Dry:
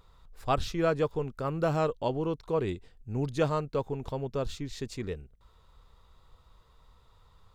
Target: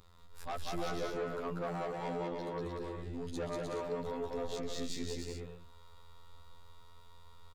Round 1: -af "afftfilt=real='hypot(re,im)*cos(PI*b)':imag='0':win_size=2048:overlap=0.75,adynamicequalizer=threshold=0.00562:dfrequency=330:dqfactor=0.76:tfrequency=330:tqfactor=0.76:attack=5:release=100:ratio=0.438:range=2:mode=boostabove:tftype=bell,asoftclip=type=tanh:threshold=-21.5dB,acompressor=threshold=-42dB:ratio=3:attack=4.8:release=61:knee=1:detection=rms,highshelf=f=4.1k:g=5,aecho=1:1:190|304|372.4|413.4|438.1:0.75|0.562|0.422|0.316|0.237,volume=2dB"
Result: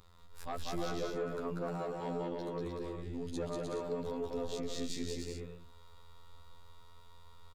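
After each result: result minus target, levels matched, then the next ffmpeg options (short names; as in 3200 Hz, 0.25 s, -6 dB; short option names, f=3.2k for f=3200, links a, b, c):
soft clip: distortion -6 dB; 1000 Hz band -2.0 dB
-af "afftfilt=real='hypot(re,im)*cos(PI*b)':imag='0':win_size=2048:overlap=0.75,adynamicequalizer=threshold=0.00562:dfrequency=330:dqfactor=0.76:tfrequency=330:tqfactor=0.76:attack=5:release=100:ratio=0.438:range=2:mode=boostabove:tftype=bell,asoftclip=type=tanh:threshold=-28dB,acompressor=threshold=-42dB:ratio=3:attack=4.8:release=61:knee=1:detection=rms,highshelf=f=4.1k:g=5,aecho=1:1:190|304|372.4|413.4|438.1:0.75|0.562|0.422|0.316|0.237,volume=2dB"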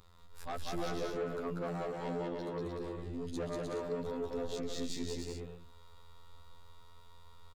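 1000 Hz band -2.5 dB
-af "afftfilt=real='hypot(re,im)*cos(PI*b)':imag='0':win_size=2048:overlap=0.75,adynamicequalizer=threshold=0.00562:dfrequency=840:dqfactor=0.76:tfrequency=840:tqfactor=0.76:attack=5:release=100:ratio=0.438:range=2:mode=boostabove:tftype=bell,asoftclip=type=tanh:threshold=-28dB,acompressor=threshold=-42dB:ratio=3:attack=4.8:release=61:knee=1:detection=rms,highshelf=f=4.1k:g=5,aecho=1:1:190|304|372.4|413.4|438.1:0.75|0.562|0.422|0.316|0.237,volume=2dB"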